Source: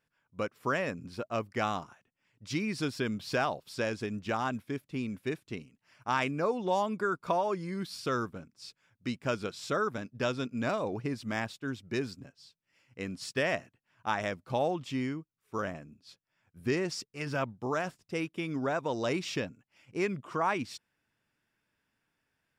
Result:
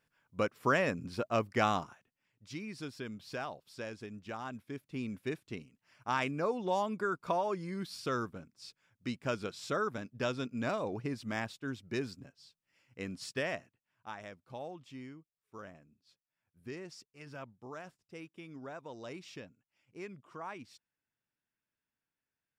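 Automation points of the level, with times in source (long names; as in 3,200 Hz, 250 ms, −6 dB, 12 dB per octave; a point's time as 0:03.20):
0:01.80 +2 dB
0:02.51 −10 dB
0:04.44 −10 dB
0:05.07 −3 dB
0:13.23 −3 dB
0:14.16 −14 dB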